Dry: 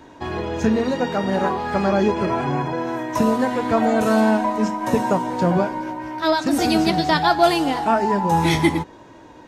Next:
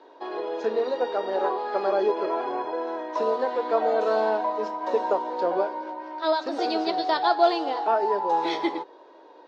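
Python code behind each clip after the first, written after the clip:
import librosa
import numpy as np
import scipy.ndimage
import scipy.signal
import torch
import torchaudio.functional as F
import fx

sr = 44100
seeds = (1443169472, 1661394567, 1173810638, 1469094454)

y = scipy.signal.sosfilt(scipy.signal.ellip(3, 1.0, 60, [410.0, 4300.0], 'bandpass', fs=sr, output='sos'), x)
y = fx.peak_eq(y, sr, hz=2200.0, db=-11.0, octaves=1.8)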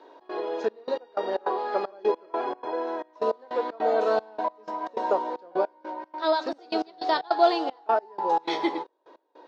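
y = fx.step_gate(x, sr, bpm=154, pattern='xx.xxxx..x..', floor_db=-24.0, edge_ms=4.5)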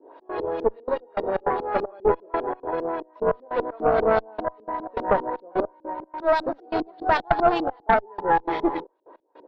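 y = fx.filter_lfo_lowpass(x, sr, shape='saw_up', hz=5.0, low_hz=260.0, high_hz=3800.0, q=1.3)
y = fx.cheby_harmonics(y, sr, harmonics=(8,), levels_db=(-19,), full_scale_db=0.0)
y = y * librosa.db_to_amplitude(2.0)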